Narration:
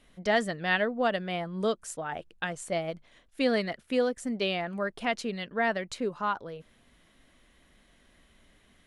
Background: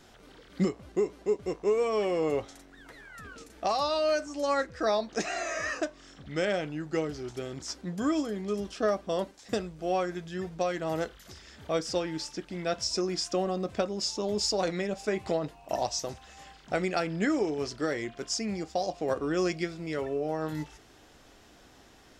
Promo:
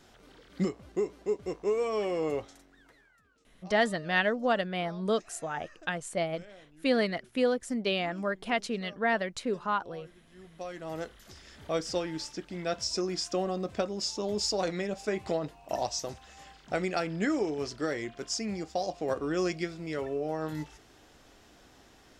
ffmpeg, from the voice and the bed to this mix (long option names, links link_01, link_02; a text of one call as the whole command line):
ffmpeg -i stem1.wav -i stem2.wav -filter_complex "[0:a]adelay=3450,volume=0dB[link_01];[1:a]volume=19dB,afade=type=out:start_time=2.29:duration=0.93:silence=0.0944061,afade=type=in:start_time=10.29:duration=1.22:silence=0.0841395[link_02];[link_01][link_02]amix=inputs=2:normalize=0" out.wav